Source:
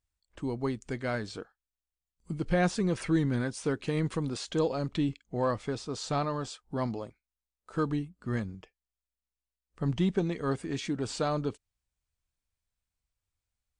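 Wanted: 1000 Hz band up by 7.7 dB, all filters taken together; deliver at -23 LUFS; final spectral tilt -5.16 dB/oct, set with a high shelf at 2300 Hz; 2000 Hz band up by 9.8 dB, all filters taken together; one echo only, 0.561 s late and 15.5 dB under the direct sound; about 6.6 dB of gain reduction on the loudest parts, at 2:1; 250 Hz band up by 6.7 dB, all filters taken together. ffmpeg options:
-af "equalizer=f=250:t=o:g=8.5,equalizer=f=1k:t=o:g=6.5,equalizer=f=2k:t=o:g=8.5,highshelf=f=2.3k:g=3.5,acompressor=threshold=-29dB:ratio=2,aecho=1:1:561:0.168,volume=8dB"

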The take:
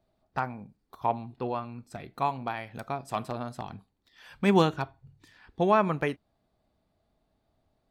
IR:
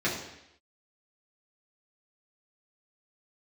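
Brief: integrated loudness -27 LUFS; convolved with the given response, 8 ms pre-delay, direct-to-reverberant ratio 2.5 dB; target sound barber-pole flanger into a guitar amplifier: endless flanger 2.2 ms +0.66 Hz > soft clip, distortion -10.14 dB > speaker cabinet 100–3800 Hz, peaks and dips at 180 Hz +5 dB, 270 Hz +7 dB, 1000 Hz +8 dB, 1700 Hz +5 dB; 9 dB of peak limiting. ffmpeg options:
-filter_complex "[0:a]alimiter=limit=-19.5dB:level=0:latency=1,asplit=2[a][b];[1:a]atrim=start_sample=2205,adelay=8[c];[b][c]afir=irnorm=-1:irlink=0,volume=-13.5dB[d];[a][d]amix=inputs=2:normalize=0,asplit=2[e][f];[f]adelay=2.2,afreqshift=0.66[g];[e][g]amix=inputs=2:normalize=1,asoftclip=threshold=-27dB,highpass=100,equalizer=f=180:t=q:w=4:g=5,equalizer=f=270:t=q:w=4:g=7,equalizer=f=1k:t=q:w=4:g=8,equalizer=f=1.7k:t=q:w=4:g=5,lowpass=f=3.8k:w=0.5412,lowpass=f=3.8k:w=1.3066,volume=6.5dB"

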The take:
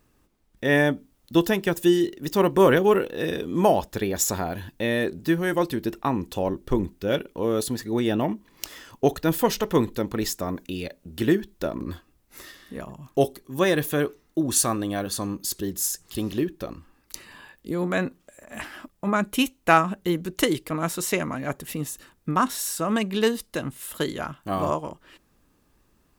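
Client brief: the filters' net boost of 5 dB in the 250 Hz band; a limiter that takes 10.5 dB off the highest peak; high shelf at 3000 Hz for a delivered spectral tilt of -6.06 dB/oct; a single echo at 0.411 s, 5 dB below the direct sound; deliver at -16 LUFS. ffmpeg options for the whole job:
-af "equalizer=f=250:t=o:g=7,highshelf=f=3k:g=-7,alimiter=limit=-13dB:level=0:latency=1,aecho=1:1:411:0.562,volume=8.5dB"

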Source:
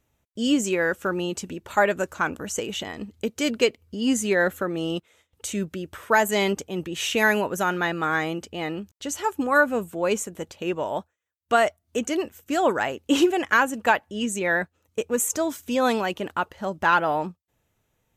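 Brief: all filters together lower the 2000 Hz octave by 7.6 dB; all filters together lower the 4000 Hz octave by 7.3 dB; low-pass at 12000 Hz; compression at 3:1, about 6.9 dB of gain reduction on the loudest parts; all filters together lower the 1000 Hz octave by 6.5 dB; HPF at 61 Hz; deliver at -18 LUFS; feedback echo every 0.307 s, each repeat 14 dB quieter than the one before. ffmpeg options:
-af "highpass=61,lowpass=12k,equalizer=f=1k:t=o:g=-7,equalizer=f=2k:t=o:g=-6,equalizer=f=4k:t=o:g=-7,acompressor=threshold=-25dB:ratio=3,aecho=1:1:307|614:0.2|0.0399,volume=13dB"

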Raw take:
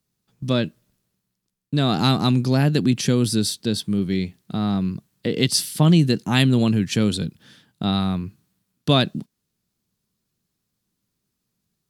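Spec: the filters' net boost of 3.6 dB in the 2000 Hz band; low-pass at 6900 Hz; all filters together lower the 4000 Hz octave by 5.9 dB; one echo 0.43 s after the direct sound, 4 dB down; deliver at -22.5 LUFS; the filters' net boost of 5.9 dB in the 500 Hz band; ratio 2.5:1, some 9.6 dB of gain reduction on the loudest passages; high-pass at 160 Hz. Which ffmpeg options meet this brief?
-af "highpass=160,lowpass=6.9k,equalizer=f=500:t=o:g=7.5,equalizer=f=2k:t=o:g=7,equalizer=f=4k:t=o:g=-9,acompressor=threshold=-26dB:ratio=2.5,aecho=1:1:430:0.631,volume=5dB"

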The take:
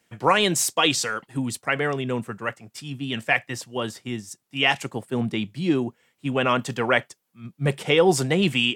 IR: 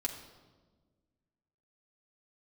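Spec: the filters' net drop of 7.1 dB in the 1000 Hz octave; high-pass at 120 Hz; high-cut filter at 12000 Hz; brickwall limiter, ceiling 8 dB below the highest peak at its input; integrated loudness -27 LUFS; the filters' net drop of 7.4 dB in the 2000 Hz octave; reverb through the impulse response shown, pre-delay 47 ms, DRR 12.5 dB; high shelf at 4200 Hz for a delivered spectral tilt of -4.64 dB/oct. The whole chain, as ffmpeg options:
-filter_complex "[0:a]highpass=120,lowpass=12k,equalizer=f=1k:t=o:g=-7.5,equalizer=f=2k:t=o:g=-6,highshelf=f=4.2k:g=-6.5,alimiter=limit=-17.5dB:level=0:latency=1,asplit=2[a][b];[1:a]atrim=start_sample=2205,adelay=47[c];[b][c]afir=irnorm=-1:irlink=0,volume=-14.5dB[d];[a][d]amix=inputs=2:normalize=0,volume=2.5dB"

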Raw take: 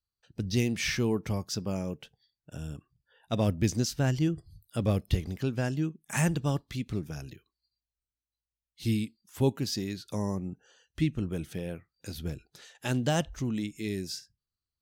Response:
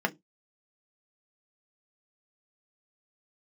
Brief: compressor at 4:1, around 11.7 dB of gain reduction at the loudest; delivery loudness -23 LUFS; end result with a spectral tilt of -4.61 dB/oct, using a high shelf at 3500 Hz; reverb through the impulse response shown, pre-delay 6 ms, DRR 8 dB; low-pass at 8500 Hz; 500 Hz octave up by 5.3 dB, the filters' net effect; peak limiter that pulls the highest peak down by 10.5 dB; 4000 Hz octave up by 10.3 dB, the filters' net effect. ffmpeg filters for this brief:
-filter_complex "[0:a]lowpass=8.5k,equalizer=f=500:t=o:g=6.5,highshelf=f=3.5k:g=7.5,equalizer=f=4k:t=o:g=8,acompressor=threshold=-33dB:ratio=4,alimiter=level_in=4.5dB:limit=-24dB:level=0:latency=1,volume=-4.5dB,asplit=2[a][b];[1:a]atrim=start_sample=2205,adelay=6[c];[b][c]afir=irnorm=-1:irlink=0,volume=-17.5dB[d];[a][d]amix=inputs=2:normalize=0,volume=16.5dB"

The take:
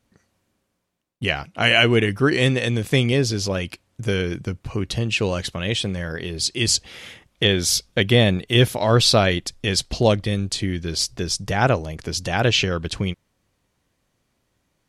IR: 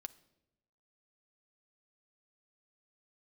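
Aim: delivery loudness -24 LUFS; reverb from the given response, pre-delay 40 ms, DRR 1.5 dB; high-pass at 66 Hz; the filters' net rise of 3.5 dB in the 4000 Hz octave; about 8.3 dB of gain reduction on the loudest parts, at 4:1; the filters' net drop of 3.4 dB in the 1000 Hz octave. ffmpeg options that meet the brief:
-filter_complex "[0:a]highpass=66,equalizer=f=1k:t=o:g=-5.5,equalizer=f=4k:t=o:g=5,acompressor=threshold=-20dB:ratio=4,asplit=2[a][b];[1:a]atrim=start_sample=2205,adelay=40[c];[b][c]afir=irnorm=-1:irlink=0,volume=3dB[d];[a][d]amix=inputs=2:normalize=0,volume=-1.5dB"

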